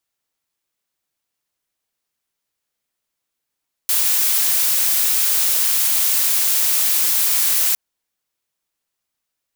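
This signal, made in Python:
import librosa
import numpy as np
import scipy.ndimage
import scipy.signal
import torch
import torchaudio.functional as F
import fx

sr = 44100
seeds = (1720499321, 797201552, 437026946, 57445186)

y = fx.noise_colour(sr, seeds[0], length_s=3.86, colour='blue', level_db=-17.0)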